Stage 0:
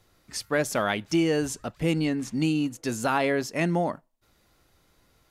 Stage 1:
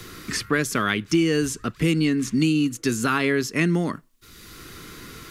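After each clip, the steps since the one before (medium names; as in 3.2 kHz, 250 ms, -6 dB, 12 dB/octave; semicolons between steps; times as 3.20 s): high-order bell 700 Hz -13.5 dB 1 oct; three bands compressed up and down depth 70%; trim +5 dB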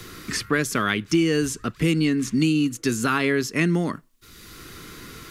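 no audible change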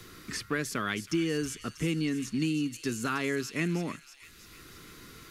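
rattle on loud lows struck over -23 dBFS, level -30 dBFS; feedback echo behind a high-pass 320 ms, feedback 58%, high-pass 3 kHz, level -8 dB; trim -9 dB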